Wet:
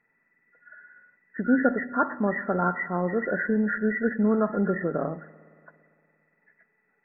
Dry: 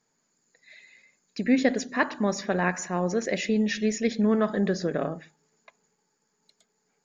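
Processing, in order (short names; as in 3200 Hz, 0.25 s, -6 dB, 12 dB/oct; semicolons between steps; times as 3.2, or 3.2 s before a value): nonlinear frequency compression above 1300 Hz 4:1; spring tank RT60 2.5 s, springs 57 ms, chirp 25 ms, DRR 20 dB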